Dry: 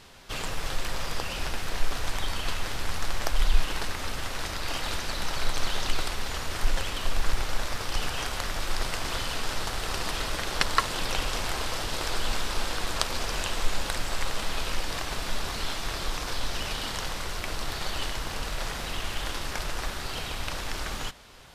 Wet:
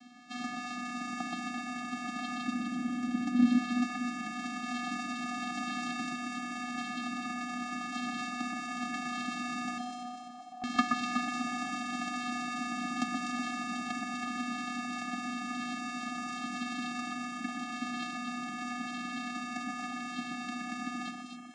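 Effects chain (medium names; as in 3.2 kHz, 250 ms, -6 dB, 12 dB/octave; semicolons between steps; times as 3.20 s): comb filter that takes the minimum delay 1 ms; flange 0.42 Hz, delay 4 ms, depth 6.9 ms, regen -52%; 2.47–3.45 s: ring modulator 140 Hz; vocoder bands 8, square 245 Hz; 9.78–10.64 s: cascade formant filter a; on a send: echo whose repeats swap between lows and highs 124 ms, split 2 kHz, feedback 73%, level -2.5 dB; on the sum: trim +3.5 dB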